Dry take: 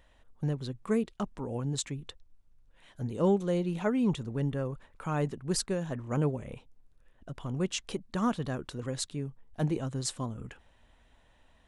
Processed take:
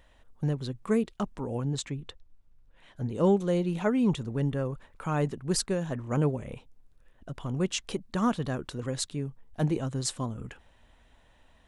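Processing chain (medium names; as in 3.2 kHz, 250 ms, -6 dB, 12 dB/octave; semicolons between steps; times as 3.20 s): 1.64–3.16 s: treble shelf 6.4 kHz -10 dB; trim +2.5 dB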